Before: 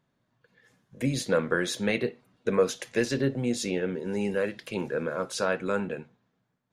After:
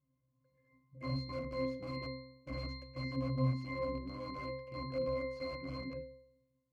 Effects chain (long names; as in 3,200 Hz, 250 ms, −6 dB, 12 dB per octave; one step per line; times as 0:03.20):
wrap-around overflow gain 24 dB
resonances in every octave C, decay 0.77 s
level +12 dB